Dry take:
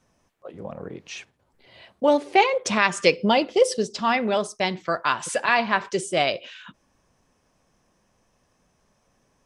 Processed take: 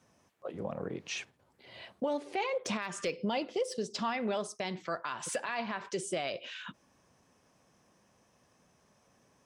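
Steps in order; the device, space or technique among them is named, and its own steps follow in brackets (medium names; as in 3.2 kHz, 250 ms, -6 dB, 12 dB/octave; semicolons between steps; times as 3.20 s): podcast mastering chain (high-pass 86 Hz; de-esser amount 55%; compression 2.5:1, threshold -32 dBFS, peak gain reduction 13.5 dB; peak limiter -23 dBFS, peak gain reduction 8 dB; MP3 128 kbps 48 kHz)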